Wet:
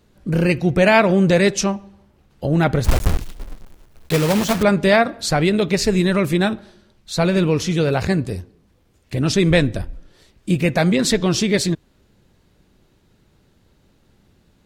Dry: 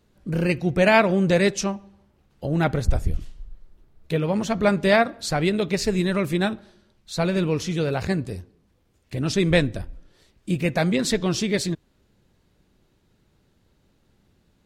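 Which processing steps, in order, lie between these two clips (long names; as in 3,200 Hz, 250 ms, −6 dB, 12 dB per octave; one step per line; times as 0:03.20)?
0:02.84–0:04.65: one scale factor per block 3 bits
in parallel at 0 dB: brickwall limiter −14 dBFS, peak gain reduction 9.5 dB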